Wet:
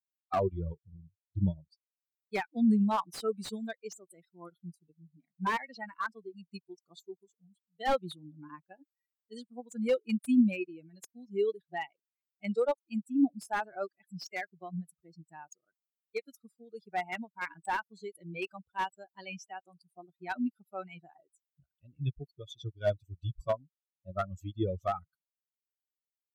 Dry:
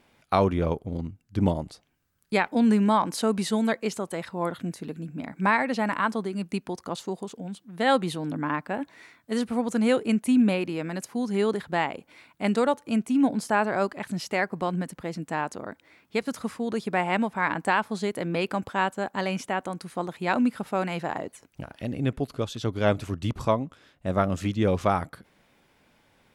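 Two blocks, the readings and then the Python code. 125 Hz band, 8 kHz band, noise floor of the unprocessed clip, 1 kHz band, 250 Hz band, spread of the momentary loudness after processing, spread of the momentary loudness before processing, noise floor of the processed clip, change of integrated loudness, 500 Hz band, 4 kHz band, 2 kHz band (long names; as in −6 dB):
−8.5 dB, −11.5 dB, −66 dBFS, −9.5 dB, −8.0 dB, 20 LU, 12 LU, below −85 dBFS, −7.0 dB, −8.5 dB, −10.5 dB, −10.5 dB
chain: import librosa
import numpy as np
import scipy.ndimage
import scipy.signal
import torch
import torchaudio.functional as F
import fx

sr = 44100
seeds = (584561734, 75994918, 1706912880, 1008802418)

y = fx.bin_expand(x, sr, power=3.0)
y = fx.slew_limit(y, sr, full_power_hz=54.0)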